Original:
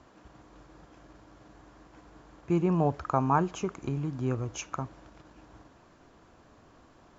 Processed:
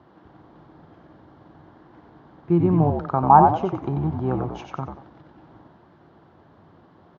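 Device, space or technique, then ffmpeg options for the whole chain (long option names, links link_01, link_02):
frequency-shifting delay pedal into a guitar cabinet: -filter_complex "[0:a]asettb=1/sr,asplit=3[link_01][link_02][link_03];[link_01]atrim=end=3.264[link_04];[link_02]atrim=start=3.26:end=4.63,asetpts=PTS-STARTPTS,afade=type=in:duration=0.004:curve=qsin,afade=type=out:start_time=1.366:duration=0.004:curve=qsin,equalizer=frequency=800:width_type=o:width=0.84:gain=12.5[link_05];[link_03]atrim=start=4.626[link_06];[link_04][link_05]acrossfade=duration=0.004:curve1=hsin:curve2=qsin[link_07];[link_07][link_06]acrossfade=duration=0.004:curve1=qsin:curve2=hsin,asplit=5[link_08][link_09][link_10][link_11][link_12];[link_09]adelay=91,afreqshift=-63,volume=-4.5dB[link_13];[link_10]adelay=182,afreqshift=-126,volume=-13.9dB[link_14];[link_11]adelay=273,afreqshift=-189,volume=-23.2dB[link_15];[link_12]adelay=364,afreqshift=-252,volume=-32.6dB[link_16];[link_08][link_13][link_14][link_15][link_16]amix=inputs=5:normalize=0,highpass=86,equalizer=frequency=94:width_type=q:width=4:gain=8,equalizer=frequency=160:width_type=q:width=4:gain=9,equalizer=frequency=350:width_type=q:width=4:gain=6,equalizer=frequency=820:width_type=q:width=4:gain=5,equalizer=frequency=2500:width_type=q:width=4:gain=-9,lowpass=frequency=3800:width=0.5412,lowpass=frequency=3800:width=1.3066,volume=1dB"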